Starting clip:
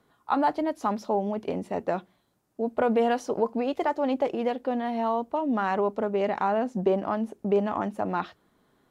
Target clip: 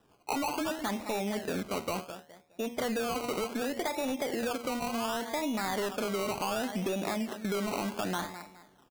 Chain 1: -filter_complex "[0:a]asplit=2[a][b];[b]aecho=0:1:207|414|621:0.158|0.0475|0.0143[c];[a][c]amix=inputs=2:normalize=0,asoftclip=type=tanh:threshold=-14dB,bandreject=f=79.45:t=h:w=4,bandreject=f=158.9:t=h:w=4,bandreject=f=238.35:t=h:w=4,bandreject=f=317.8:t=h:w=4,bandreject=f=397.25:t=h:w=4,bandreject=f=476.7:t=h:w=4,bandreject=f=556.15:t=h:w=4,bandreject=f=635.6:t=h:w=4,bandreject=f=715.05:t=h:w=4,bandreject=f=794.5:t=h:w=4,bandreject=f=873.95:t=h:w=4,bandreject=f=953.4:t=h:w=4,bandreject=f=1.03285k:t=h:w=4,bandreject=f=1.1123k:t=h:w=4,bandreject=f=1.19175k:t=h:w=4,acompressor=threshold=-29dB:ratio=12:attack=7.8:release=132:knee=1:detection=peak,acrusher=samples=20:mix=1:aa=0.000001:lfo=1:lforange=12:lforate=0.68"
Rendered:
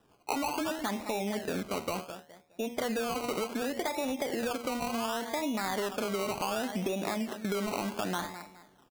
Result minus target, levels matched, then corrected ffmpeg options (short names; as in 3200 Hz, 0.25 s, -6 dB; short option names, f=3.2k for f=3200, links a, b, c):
soft clip: distortion -10 dB
-filter_complex "[0:a]asplit=2[a][b];[b]aecho=0:1:207|414|621:0.158|0.0475|0.0143[c];[a][c]amix=inputs=2:normalize=0,asoftclip=type=tanh:threshold=-21dB,bandreject=f=79.45:t=h:w=4,bandreject=f=158.9:t=h:w=4,bandreject=f=238.35:t=h:w=4,bandreject=f=317.8:t=h:w=4,bandreject=f=397.25:t=h:w=4,bandreject=f=476.7:t=h:w=4,bandreject=f=556.15:t=h:w=4,bandreject=f=635.6:t=h:w=4,bandreject=f=715.05:t=h:w=4,bandreject=f=794.5:t=h:w=4,bandreject=f=873.95:t=h:w=4,bandreject=f=953.4:t=h:w=4,bandreject=f=1.03285k:t=h:w=4,bandreject=f=1.1123k:t=h:w=4,bandreject=f=1.19175k:t=h:w=4,acompressor=threshold=-29dB:ratio=12:attack=7.8:release=132:knee=1:detection=peak,acrusher=samples=20:mix=1:aa=0.000001:lfo=1:lforange=12:lforate=0.68"